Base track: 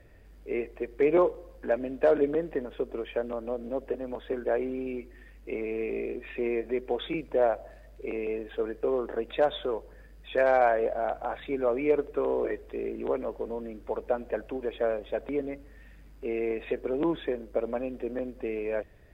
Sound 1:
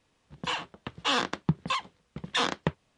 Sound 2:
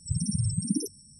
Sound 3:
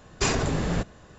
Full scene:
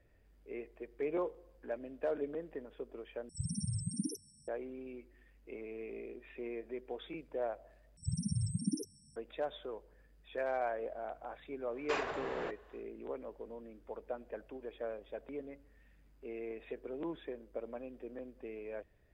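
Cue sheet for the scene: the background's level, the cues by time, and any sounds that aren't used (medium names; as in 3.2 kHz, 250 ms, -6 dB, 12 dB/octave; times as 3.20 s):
base track -13 dB
3.29 s: replace with 2 -9.5 dB
7.97 s: replace with 2 -7 dB + treble shelf 8.4 kHz -9.5 dB
11.68 s: add 3 -7.5 dB, fades 0.10 s + three-band isolator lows -22 dB, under 400 Hz, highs -22 dB, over 3.2 kHz
not used: 1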